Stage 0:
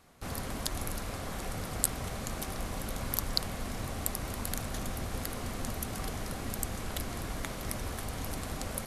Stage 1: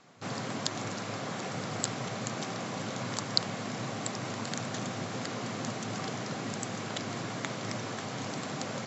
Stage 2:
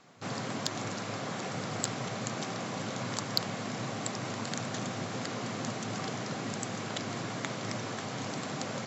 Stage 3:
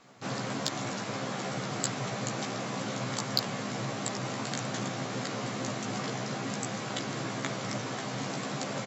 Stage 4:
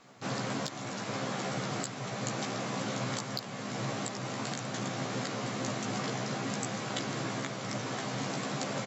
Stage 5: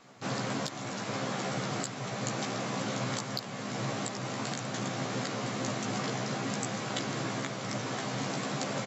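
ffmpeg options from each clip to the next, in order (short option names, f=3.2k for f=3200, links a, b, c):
-af "afftfilt=real='re*between(b*sr/4096,100,7700)':imag='im*between(b*sr/4096,100,7700)':win_size=4096:overlap=0.75,volume=3.5dB"
-af "asoftclip=type=tanh:threshold=-9.5dB"
-filter_complex "[0:a]asplit=2[a][b];[b]adelay=15,volume=-3dB[c];[a][c]amix=inputs=2:normalize=0"
-af "alimiter=limit=-19.5dB:level=0:latency=1:release=496"
-af "volume=1dB" -ar 32000 -c:a ac3 -b:a 96k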